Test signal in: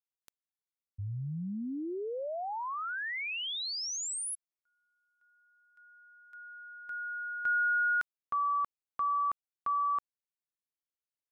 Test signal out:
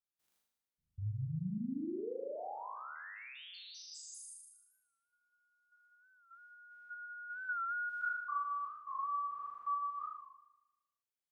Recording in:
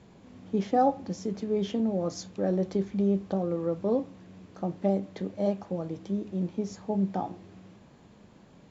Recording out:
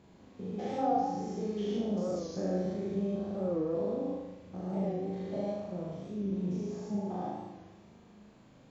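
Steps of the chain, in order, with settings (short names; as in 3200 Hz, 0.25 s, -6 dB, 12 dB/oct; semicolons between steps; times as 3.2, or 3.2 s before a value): stepped spectrum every 0.2 s; flutter echo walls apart 6.6 m, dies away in 0.98 s; record warp 45 rpm, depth 100 cents; gain -5 dB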